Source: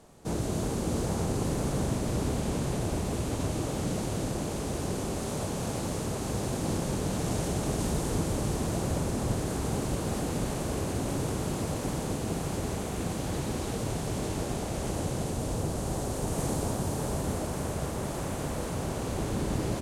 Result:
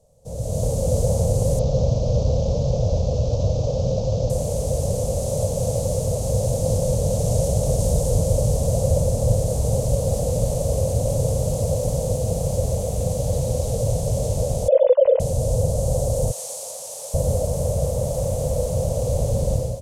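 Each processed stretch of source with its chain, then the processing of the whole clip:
0:01.59–0:04.30: variable-slope delta modulation 32 kbit/s + parametric band 1,900 Hz −14.5 dB 0.37 octaves
0:14.68–0:15.20: three sine waves on the formant tracks + comb filter 2 ms, depth 46%
0:16.31–0:17.14: variable-slope delta modulation 64 kbit/s + high-pass filter 1,200 Hz + floating-point word with a short mantissa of 4 bits
whole clip: drawn EQ curve 120 Hz 0 dB, 360 Hz −24 dB, 520 Hz +6 dB, 770 Hz −11 dB, 1,500 Hz −29 dB, 6,200 Hz −5 dB; automatic gain control gain up to 13 dB

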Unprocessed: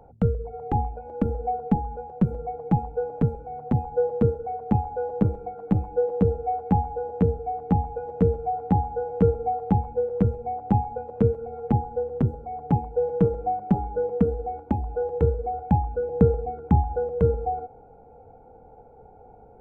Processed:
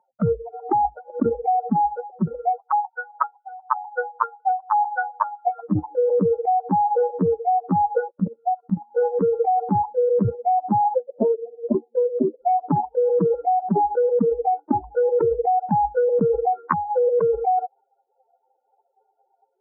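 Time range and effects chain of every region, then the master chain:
0:02.58–0:05.46: high-pass filter 820 Hz 24 dB per octave + spectral tilt −4 dB per octave + single-tap delay 508 ms −9 dB
0:08.08–0:08.96: output level in coarse steps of 9 dB + loudspeaker in its box 130–2,300 Hz, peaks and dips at 200 Hz +8 dB, 440 Hz −8 dB, 800 Hz −9 dB
0:10.94–0:12.41: elliptic band-pass filter 180–640 Hz + highs frequency-modulated by the lows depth 0.46 ms
0:16.67–0:17.07: downward compressor 3 to 1, threshold −34 dBFS + double-tracking delay 12 ms −2 dB
whole clip: spectral dynamics exaggerated over time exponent 3; elliptic band-pass filter 170–1,300 Hz, stop band 40 dB; envelope flattener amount 100%

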